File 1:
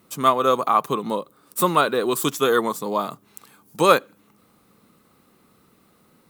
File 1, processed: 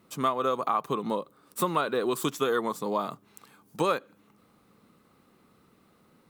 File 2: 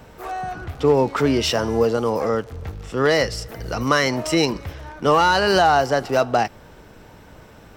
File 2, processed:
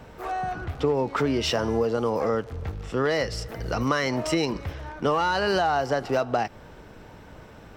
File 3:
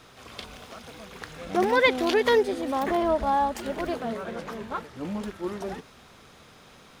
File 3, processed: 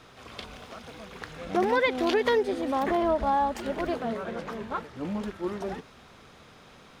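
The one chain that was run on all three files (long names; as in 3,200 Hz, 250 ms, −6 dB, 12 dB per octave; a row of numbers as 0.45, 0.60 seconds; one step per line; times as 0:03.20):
high-shelf EQ 6,400 Hz −8 dB
downward compressor 4 to 1, threshold −20 dBFS
normalise the peak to −12 dBFS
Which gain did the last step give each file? −3.0, −0.5, 0.0 decibels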